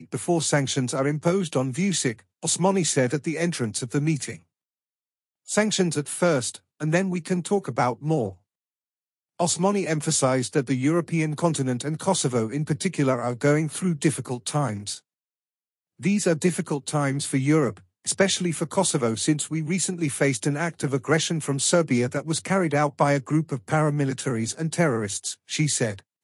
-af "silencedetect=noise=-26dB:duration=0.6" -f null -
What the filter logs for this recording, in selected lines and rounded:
silence_start: 4.31
silence_end: 5.50 | silence_duration: 1.20
silence_start: 8.29
silence_end: 9.40 | silence_duration: 1.11
silence_start: 14.94
silence_end: 16.04 | silence_duration: 1.10